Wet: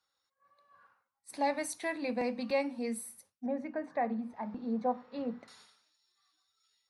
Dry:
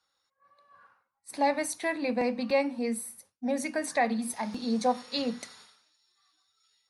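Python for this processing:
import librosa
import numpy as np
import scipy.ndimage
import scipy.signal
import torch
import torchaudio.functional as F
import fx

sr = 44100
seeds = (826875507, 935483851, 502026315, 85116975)

y = fx.lowpass(x, sr, hz=1300.0, slope=12, at=(3.46, 5.48))
y = F.gain(torch.from_numpy(y), -5.0).numpy()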